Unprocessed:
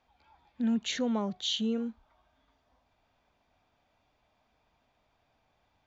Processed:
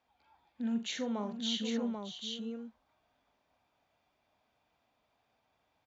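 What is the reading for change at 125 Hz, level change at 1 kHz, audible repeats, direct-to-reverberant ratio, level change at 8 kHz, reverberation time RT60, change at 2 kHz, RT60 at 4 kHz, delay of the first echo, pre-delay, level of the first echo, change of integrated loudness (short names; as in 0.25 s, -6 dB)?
n/a, -3.0 dB, 4, none, n/a, none, -3.0 dB, none, 43 ms, none, -10.0 dB, -5.0 dB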